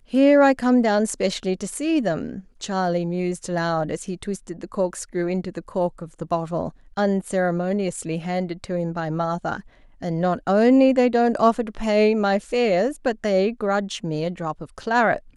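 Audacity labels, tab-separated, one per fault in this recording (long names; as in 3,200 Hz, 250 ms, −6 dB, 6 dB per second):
4.940000	4.940000	drop-out 3.1 ms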